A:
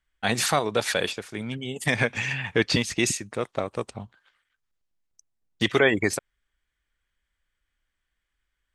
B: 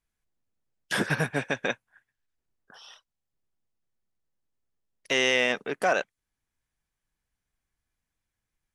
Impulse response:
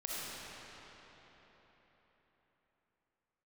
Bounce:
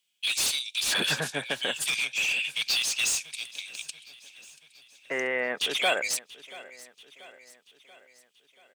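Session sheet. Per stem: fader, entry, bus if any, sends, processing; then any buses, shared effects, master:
-7.0 dB, 0.00 s, no send, echo send -19.5 dB, steep high-pass 2400 Hz 72 dB/oct; high shelf 9300 Hz +8 dB; overdrive pedal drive 24 dB, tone 6700 Hz, clips at -10.5 dBFS
-2.0 dB, 0.00 s, no send, echo send -19 dB, elliptic band-pass 130–2000 Hz; low shelf 240 Hz -8.5 dB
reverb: off
echo: feedback echo 0.684 s, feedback 54%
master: dry

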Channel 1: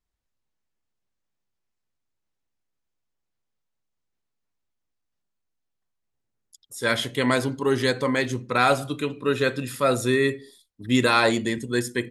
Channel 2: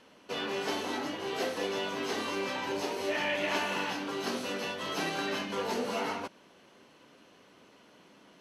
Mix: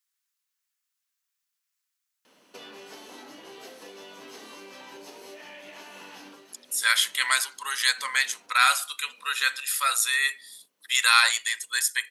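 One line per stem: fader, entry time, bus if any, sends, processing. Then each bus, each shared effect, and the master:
+2.5 dB, 0.00 s, no send, no echo send, HPF 1200 Hz 24 dB/oct
-3.5 dB, 2.25 s, muted 7.41–7.98, no send, echo send -18.5 dB, HPF 170 Hz 12 dB/oct; compressor 12:1, threshold -39 dBFS, peak gain reduction 13 dB; auto duck -13 dB, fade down 0.25 s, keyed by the first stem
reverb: off
echo: echo 1.054 s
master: high shelf 5800 Hz +11.5 dB

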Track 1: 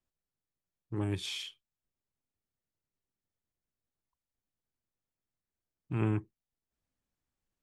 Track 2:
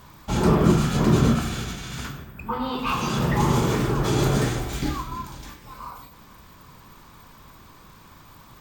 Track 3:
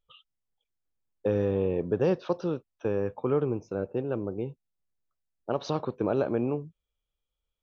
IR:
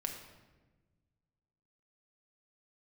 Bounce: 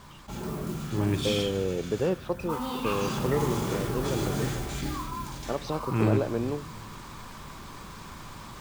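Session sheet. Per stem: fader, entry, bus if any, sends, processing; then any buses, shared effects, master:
+2.5 dB, 0.00 s, send -5 dB, dry
2.11 s -21 dB -> 2.56 s -14.5 dB, 0.00 s, send -4.5 dB, Chebyshev low-pass 9400 Hz, order 2; modulation noise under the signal 16 dB; fast leveller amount 50%
-2.0 dB, 0.00 s, no send, dry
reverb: on, RT60 1.3 s, pre-delay 5 ms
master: dry

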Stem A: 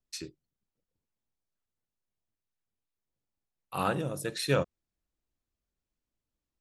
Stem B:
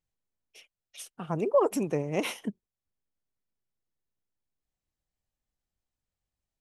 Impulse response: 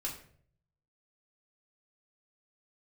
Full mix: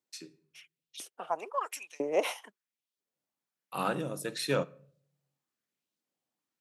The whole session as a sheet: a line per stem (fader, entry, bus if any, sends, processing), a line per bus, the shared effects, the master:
-3.5 dB, 0.00 s, send -15.5 dB, added harmonics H 5 -28 dB, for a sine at -12.5 dBFS; auto duck -17 dB, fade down 0.60 s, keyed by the second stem
-2.0 dB, 0.00 s, no send, LFO high-pass saw up 1 Hz 320–4100 Hz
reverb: on, RT60 0.55 s, pre-delay 3 ms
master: HPF 150 Hz 24 dB/oct

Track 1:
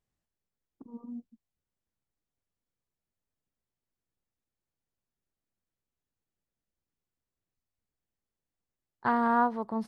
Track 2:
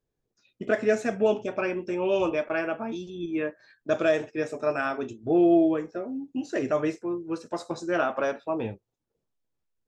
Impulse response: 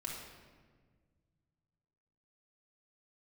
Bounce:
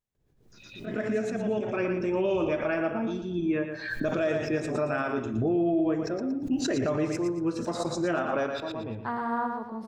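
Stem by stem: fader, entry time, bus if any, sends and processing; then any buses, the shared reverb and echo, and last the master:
-5.5 dB, 0.00 s, no send, echo send -4.5 dB, dry
-1.5 dB, 0.15 s, send -18 dB, echo send -7.5 dB, tone controls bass +8 dB, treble -4 dB; backwards sustainer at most 78 dB/s; auto duck -24 dB, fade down 0.60 s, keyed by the first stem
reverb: on, RT60 1.6 s, pre-delay 3 ms
echo: feedback echo 0.116 s, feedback 32%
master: limiter -18.5 dBFS, peak gain reduction 9.5 dB

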